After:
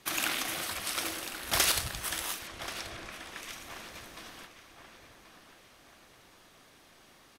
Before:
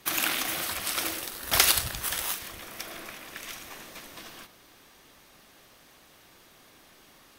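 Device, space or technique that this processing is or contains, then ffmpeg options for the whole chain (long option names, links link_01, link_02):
overflowing digital effects unit: -filter_complex "[0:a]asettb=1/sr,asplit=3[link_01][link_02][link_03];[link_01]atrim=end=2.474[link_04];[link_02]atrim=start=2.47:end=3.42,asetpts=PTS-STARTPTS,afade=type=in:duration=0.004:curve=qsin,afade=type=out:start_time=0.946:duration=0.004:curve=qsin,lowpass=7600[link_05];[link_03]atrim=start=3.416[link_06];[link_04][link_05]acrossfade=duration=0.004:curve1=hsin:curve2=qsin[link_07];[link_07][link_06]acrossfade=duration=0.004:curve1=qsin:curve2=hsin,aeval=exprs='(mod(3.35*val(0)+1,2)-1)/3.35':channel_layout=same,lowpass=12000,asplit=2[link_08][link_09];[link_09]adelay=1082,lowpass=frequency=3300:poles=1,volume=-10.5dB,asplit=2[link_10][link_11];[link_11]adelay=1082,lowpass=frequency=3300:poles=1,volume=0.47,asplit=2[link_12][link_13];[link_13]adelay=1082,lowpass=frequency=3300:poles=1,volume=0.47,asplit=2[link_14][link_15];[link_15]adelay=1082,lowpass=frequency=3300:poles=1,volume=0.47,asplit=2[link_16][link_17];[link_17]adelay=1082,lowpass=frequency=3300:poles=1,volume=0.47[link_18];[link_08][link_10][link_12][link_14][link_16][link_18]amix=inputs=6:normalize=0,volume=-3dB"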